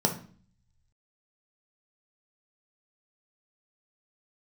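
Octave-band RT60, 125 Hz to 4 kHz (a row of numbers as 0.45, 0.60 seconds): 1.3, 0.75, 0.45, 0.45, 0.40, 0.40 seconds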